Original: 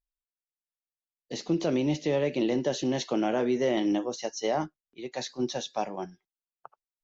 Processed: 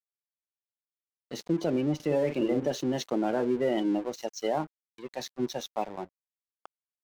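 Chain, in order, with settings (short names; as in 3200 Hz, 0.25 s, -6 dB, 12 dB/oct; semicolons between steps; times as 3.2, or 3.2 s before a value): 1.95–2.72 doubler 47 ms -6 dB; spectral gate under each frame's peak -25 dB strong; crossover distortion -43.5 dBFS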